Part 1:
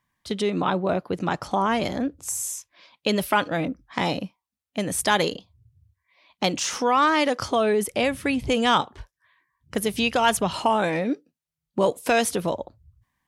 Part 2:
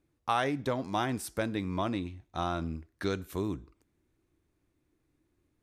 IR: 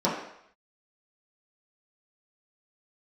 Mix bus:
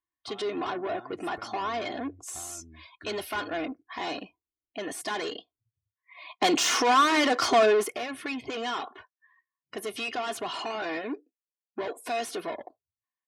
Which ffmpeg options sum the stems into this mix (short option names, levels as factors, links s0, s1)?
-filter_complex "[0:a]asplit=2[s0][s1];[s1]highpass=f=720:p=1,volume=28.2,asoftclip=type=tanh:threshold=0.473[s2];[s0][s2]amix=inputs=2:normalize=0,lowpass=f=3400:p=1,volume=0.501,highpass=150,volume=0.376,afade=t=in:st=5.56:d=0.63:silence=0.316228,afade=t=out:st=7.63:d=0.36:silence=0.298538[s3];[1:a]acompressor=threshold=0.0112:ratio=12,volume=0.473[s4];[s3][s4]amix=inputs=2:normalize=0,afftdn=nr=24:nf=-52,aecho=1:1:2.8:0.65"